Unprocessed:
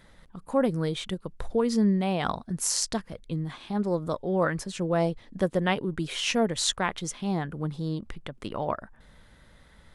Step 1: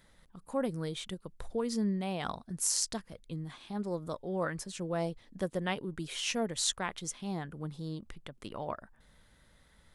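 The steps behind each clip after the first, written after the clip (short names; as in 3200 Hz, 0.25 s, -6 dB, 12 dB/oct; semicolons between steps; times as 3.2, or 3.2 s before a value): high shelf 5000 Hz +8 dB; gain -8.5 dB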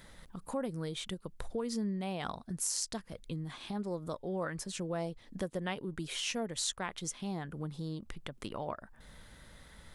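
compressor 2:1, threshold -51 dBFS, peak gain reduction 13 dB; gain +8.5 dB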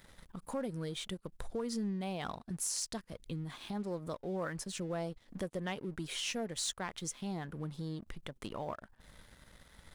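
sample leveller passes 2; gain -8.5 dB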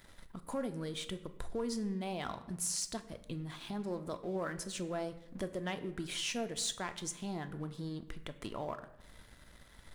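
reverb RT60 0.90 s, pre-delay 3 ms, DRR 8.5 dB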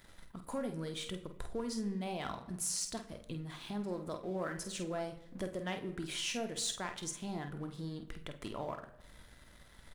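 doubler 49 ms -8 dB; gain -1 dB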